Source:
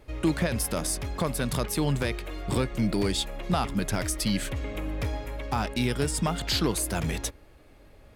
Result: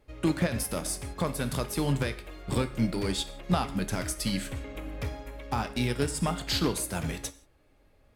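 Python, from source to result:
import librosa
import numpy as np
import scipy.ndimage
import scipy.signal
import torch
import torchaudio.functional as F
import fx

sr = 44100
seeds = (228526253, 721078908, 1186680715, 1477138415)

y = fx.rev_gated(x, sr, seeds[0], gate_ms=200, shape='falling', drr_db=7.5)
y = fx.upward_expand(y, sr, threshold_db=-41.0, expansion=1.5)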